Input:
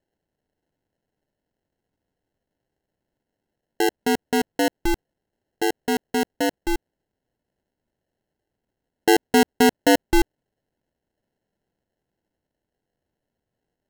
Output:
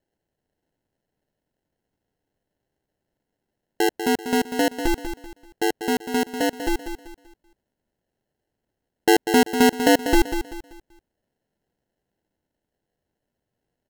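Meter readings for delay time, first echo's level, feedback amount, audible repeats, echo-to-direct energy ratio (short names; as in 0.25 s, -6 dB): 0.193 s, -9.0 dB, 33%, 3, -8.5 dB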